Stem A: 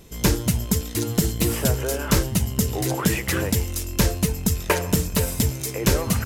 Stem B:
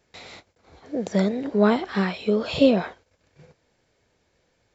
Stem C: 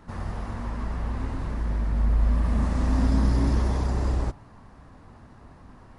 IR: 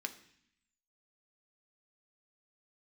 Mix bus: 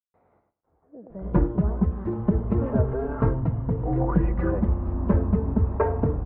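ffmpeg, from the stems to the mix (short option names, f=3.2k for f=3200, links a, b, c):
-filter_complex "[0:a]asplit=2[a][b];[b]adelay=3.7,afreqshift=0.35[c];[a][c]amix=inputs=2:normalize=1,adelay=1100,volume=2dB,asplit=2[d][e];[e]volume=-21dB[f];[1:a]acrusher=bits=8:mix=0:aa=0.000001,volume=-17dB,asplit=2[g][h];[h]volume=-7dB[i];[2:a]adelay=2050,volume=-6.5dB[j];[f][i]amix=inputs=2:normalize=0,aecho=0:1:100|200|300:1|0.17|0.0289[k];[d][g][j][k]amix=inputs=4:normalize=0,lowpass=f=1.2k:w=0.5412,lowpass=f=1.2k:w=1.3066"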